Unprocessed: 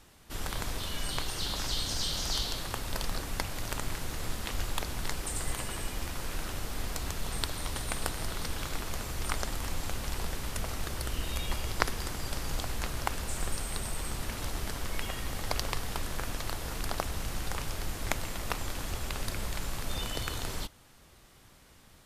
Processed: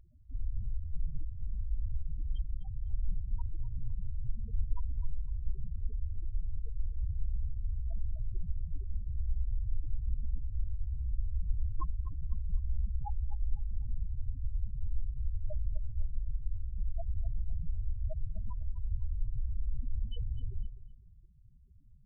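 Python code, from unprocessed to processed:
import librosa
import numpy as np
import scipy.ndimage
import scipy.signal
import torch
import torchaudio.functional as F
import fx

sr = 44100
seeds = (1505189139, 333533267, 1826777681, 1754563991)

y = fx.air_absorb(x, sr, metres=310.0)
y = y + 10.0 ** (-10.0 / 20.0) * np.pad(y, (int(116 * sr / 1000.0), 0))[:len(y)]
y = fx.spec_topn(y, sr, count=4)
y = fx.echo_feedback(y, sr, ms=252, feedback_pct=30, wet_db=-14.5)
y = y * 10.0 ** (3.5 / 20.0)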